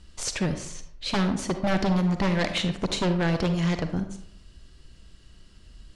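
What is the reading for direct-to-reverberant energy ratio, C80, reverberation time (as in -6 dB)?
8.0 dB, 12.0 dB, 0.70 s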